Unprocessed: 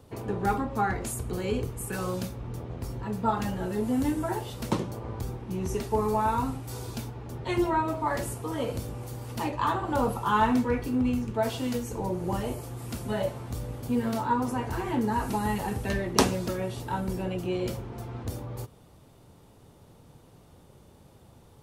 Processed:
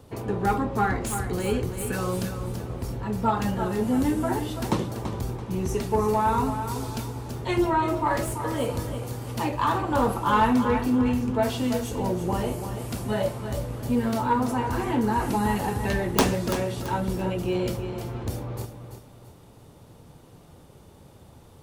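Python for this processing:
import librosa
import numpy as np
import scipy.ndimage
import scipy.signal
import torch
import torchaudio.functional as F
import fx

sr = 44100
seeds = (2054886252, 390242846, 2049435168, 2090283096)

y = fx.tracing_dist(x, sr, depth_ms=0.18)
y = 10.0 ** (-14.0 / 20.0) * np.tanh(y / 10.0 ** (-14.0 / 20.0))
y = fx.echo_feedback(y, sr, ms=335, feedback_pct=34, wet_db=-9.0)
y = F.gain(torch.from_numpy(y), 3.5).numpy()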